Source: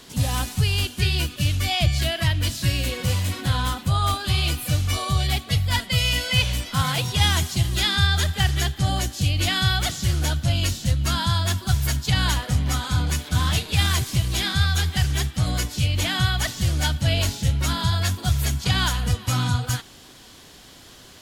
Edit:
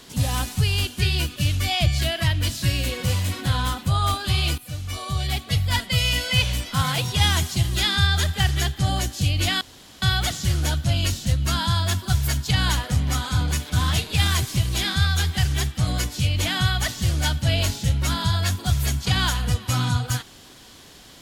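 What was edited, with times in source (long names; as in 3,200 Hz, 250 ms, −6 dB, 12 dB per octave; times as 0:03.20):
0:04.58–0:05.61: fade in, from −14 dB
0:09.61: splice in room tone 0.41 s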